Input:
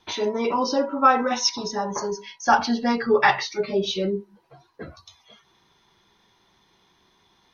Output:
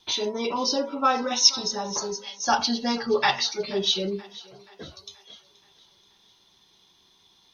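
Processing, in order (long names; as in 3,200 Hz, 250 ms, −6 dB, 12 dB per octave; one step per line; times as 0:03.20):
high shelf with overshoot 2,600 Hz +8 dB, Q 1.5
on a send: feedback echo with a high-pass in the loop 479 ms, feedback 51%, high-pass 370 Hz, level −19.5 dB
on the sum: level −4 dB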